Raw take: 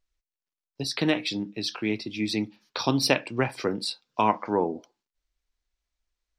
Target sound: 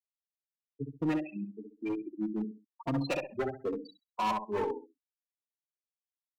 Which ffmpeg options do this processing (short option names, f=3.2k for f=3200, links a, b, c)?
-filter_complex "[0:a]acrossover=split=300|1100|5100[a][b][c][d];[d]acompressor=threshold=-55dB:ratio=6[e];[a][b][c][e]amix=inputs=4:normalize=0,highshelf=f=7.5k:g=-7,afftfilt=real='re*gte(hypot(re,im),0.158)':imag='im*gte(hypot(re,im),0.158)':win_size=1024:overlap=0.75,equalizer=f=200:w=0.76:g=-4,asplit=2[f][g];[g]adelay=65,lowpass=f=2.2k:p=1,volume=-6dB,asplit=2[h][i];[i]adelay=65,lowpass=f=2.2k:p=1,volume=0.27,asplit=2[j][k];[k]adelay=65,lowpass=f=2.2k:p=1,volume=0.27[l];[f][h][j][l]amix=inputs=4:normalize=0,asoftclip=type=hard:threshold=-24.5dB,asplit=2[m][n];[n]adelay=3.8,afreqshift=1[o];[m][o]amix=inputs=2:normalize=1"